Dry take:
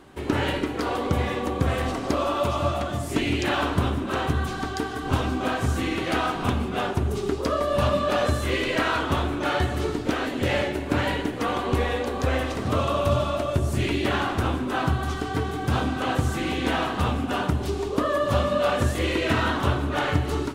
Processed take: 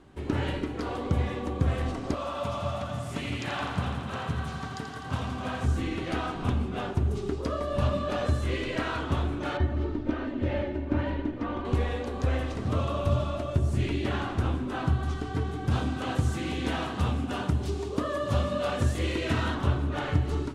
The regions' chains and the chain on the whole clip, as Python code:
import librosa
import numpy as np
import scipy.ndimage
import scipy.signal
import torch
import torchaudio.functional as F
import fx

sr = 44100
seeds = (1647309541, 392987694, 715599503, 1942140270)

y = fx.chain(x, sr, fx.highpass(hz=120.0, slope=12),
    fx.peak_eq(hz=340.0, db=-12.5, octaves=0.63),
    fx.echo_crushed(ms=84, feedback_pct=80, bits=9, wet_db=-8), at=(2.14, 5.65))
y = fx.chain(y, sr, fx.spacing_loss(db_at_10k=25),
    fx.comb(ms=3.3, depth=0.57), at=(9.57, 11.65))
y = fx.chain(y, sr, fx.highpass(hz=49.0, slope=12),
    fx.high_shelf(hz=3800.0, db=6.0), at=(15.71, 19.55))
y = scipy.signal.sosfilt(scipy.signal.butter(2, 9600.0, 'lowpass', fs=sr, output='sos'), y)
y = fx.low_shelf(y, sr, hz=240.0, db=9.0)
y = y * librosa.db_to_amplitude(-8.5)